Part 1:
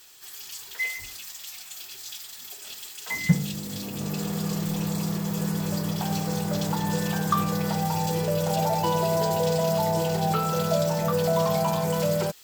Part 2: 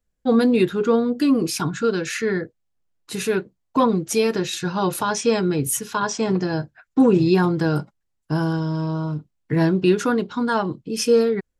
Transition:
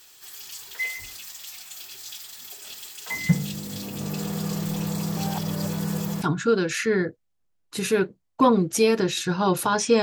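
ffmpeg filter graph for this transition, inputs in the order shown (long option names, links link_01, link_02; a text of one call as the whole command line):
ffmpeg -i cue0.wav -i cue1.wav -filter_complex "[0:a]apad=whole_dur=10.02,atrim=end=10.02,asplit=2[link_01][link_02];[link_01]atrim=end=5.172[link_03];[link_02]atrim=start=5.168:end=6.222,asetpts=PTS-STARTPTS,areverse[link_04];[1:a]atrim=start=1.578:end=5.38[link_05];[link_03][link_04]acrossfade=duration=0.004:curve1=hsin:curve2=hsin[link_06];[link_06][link_05]acrossfade=duration=0.004:curve1=hsin:curve2=hsin" out.wav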